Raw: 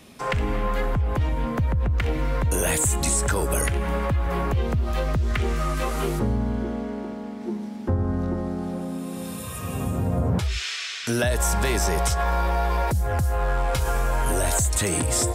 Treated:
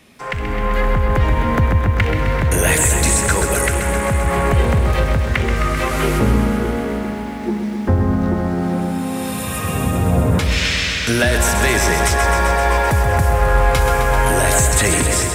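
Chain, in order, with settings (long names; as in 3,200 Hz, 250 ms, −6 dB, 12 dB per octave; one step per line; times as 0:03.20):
parametric band 2,000 Hz +6 dB 0.88 octaves
automatic gain control gain up to 11 dB
feedback echo at a low word length 130 ms, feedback 80%, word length 8 bits, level −8 dB
level −2 dB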